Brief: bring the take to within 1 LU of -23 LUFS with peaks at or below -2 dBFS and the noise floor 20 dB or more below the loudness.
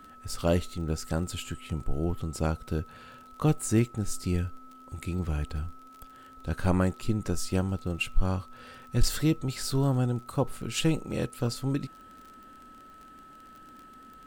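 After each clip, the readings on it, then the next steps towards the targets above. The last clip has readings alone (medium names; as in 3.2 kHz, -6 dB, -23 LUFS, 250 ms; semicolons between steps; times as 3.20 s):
tick rate 29 per s; steady tone 1.3 kHz; tone level -49 dBFS; loudness -30.5 LUFS; peak level -12.0 dBFS; loudness target -23.0 LUFS
-> de-click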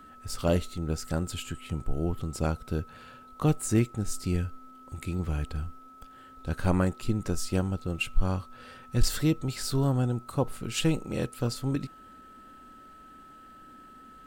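tick rate 0.28 per s; steady tone 1.3 kHz; tone level -49 dBFS
-> band-stop 1.3 kHz, Q 30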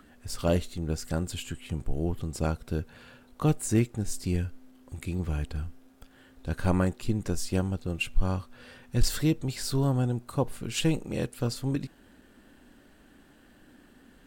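steady tone not found; loudness -30.5 LUFS; peak level -12.0 dBFS; loudness target -23.0 LUFS
-> trim +7.5 dB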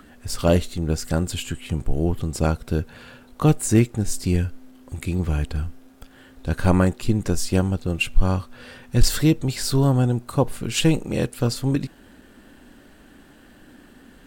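loudness -23.0 LUFS; peak level -4.5 dBFS; noise floor -50 dBFS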